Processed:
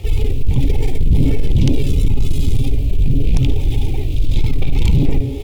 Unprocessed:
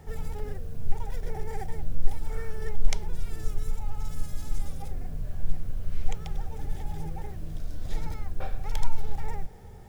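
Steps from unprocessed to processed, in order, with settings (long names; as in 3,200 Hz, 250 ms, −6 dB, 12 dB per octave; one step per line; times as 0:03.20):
parametric band 970 Hz −7 dB 0.72 octaves
echo with shifted repeats 118 ms, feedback 34%, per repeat −140 Hz, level −11 dB
time stretch by overlap-add 0.55×, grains 36 ms
drawn EQ curve 110 Hz 0 dB, 180 Hz −14 dB, 330 Hz +2 dB, 600 Hz −8 dB, 1,100 Hz −6 dB, 1,600 Hz −22 dB, 2,400 Hz +7 dB, 3,600 Hz +7 dB, 5,500 Hz −4 dB
sine wavefolder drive 16 dB, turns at −5.5 dBFS
reversed playback
upward compression, threshold −16 dBFS
reversed playback
level −1.5 dB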